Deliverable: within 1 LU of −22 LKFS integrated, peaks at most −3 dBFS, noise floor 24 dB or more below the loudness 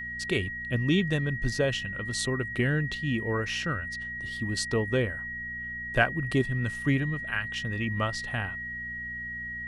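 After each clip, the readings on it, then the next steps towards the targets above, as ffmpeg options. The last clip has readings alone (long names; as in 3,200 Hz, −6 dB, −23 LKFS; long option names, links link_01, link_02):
mains hum 60 Hz; hum harmonics up to 240 Hz; level of the hum −45 dBFS; interfering tone 1,900 Hz; level of the tone −34 dBFS; integrated loudness −29.5 LKFS; sample peak −8.0 dBFS; target loudness −22.0 LKFS
→ -af "bandreject=frequency=60:width_type=h:width=4,bandreject=frequency=120:width_type=h:width=4,bandreject=frequency=180:width_type=h:width=4,bandreject=frequency=240:width_type=h:width=4"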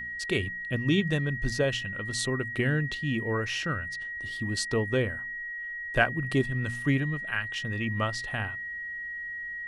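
mains hum none found; interfering tone 1,900 Hz; level of the tone −34 dBFS
→ -af "bandreject=frequency=1900:width=30"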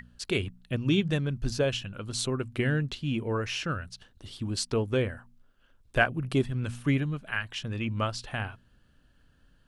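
interfering tone none found; integrated loudness −30.0 LKFS; sample peak −8.5 dBFS; target loudness −22.0 LKFS
→ -af "volume=8dB,alimiter=limit=-3dB:level=0:latency=1"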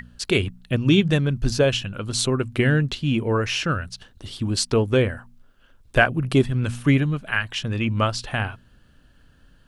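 integrated loudness −22.5 LKFS; sample peak −3.0 dBFS; background noise floor −56 dBFS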